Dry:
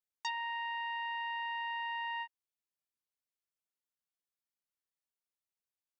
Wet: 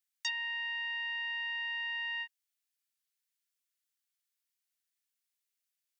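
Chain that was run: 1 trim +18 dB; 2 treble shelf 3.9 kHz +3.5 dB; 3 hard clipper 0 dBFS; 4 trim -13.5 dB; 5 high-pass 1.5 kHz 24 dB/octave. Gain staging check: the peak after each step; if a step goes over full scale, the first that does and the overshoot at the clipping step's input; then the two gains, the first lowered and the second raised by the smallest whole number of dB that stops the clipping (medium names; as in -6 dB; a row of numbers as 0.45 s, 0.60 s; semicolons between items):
-7.5 dBFS, -5.5 dBFS, -5.5 dBFS, -19.0 dBFS, -20.5 dBFS; nothing clips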